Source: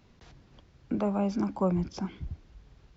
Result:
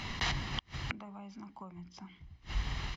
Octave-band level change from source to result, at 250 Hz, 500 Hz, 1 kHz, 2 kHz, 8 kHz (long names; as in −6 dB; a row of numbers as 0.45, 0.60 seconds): −16.0 dB, −18.5 dB, −5.0 dB, +12.0 dB, can't be measured